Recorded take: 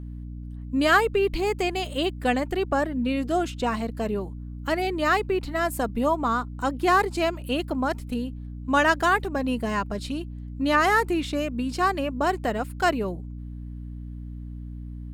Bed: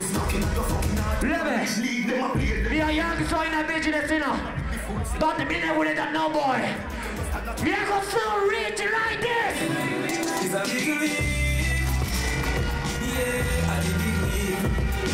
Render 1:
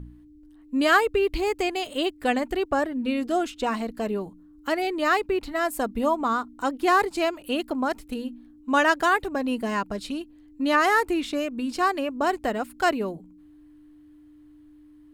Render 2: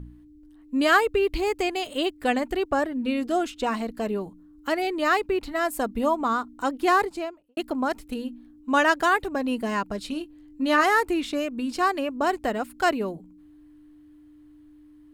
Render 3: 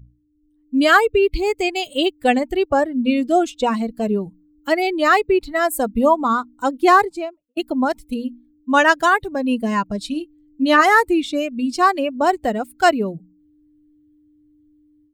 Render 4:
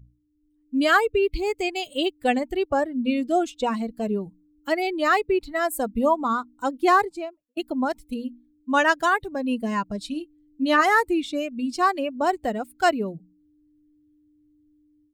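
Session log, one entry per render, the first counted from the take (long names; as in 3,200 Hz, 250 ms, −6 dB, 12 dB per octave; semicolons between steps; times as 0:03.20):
hum removal 60 Hz, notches 4
0:06.89–0:07.57: fade out and dull; 0:10.10–0:10.84: double-tracking delay 23 ms −8.5 dB
spectral dynamics exaggerated over time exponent 1.5; automatic gain control gain up to 11 dB
level −5.5 dB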